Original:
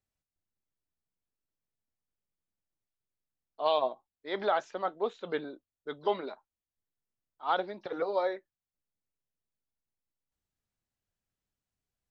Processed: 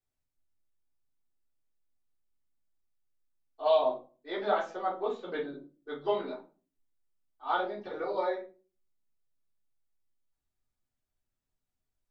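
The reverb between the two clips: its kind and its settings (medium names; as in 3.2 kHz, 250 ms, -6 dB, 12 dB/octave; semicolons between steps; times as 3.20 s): simulated room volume 190 m³, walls furnished, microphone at 3.6 m; trim -8.5 dB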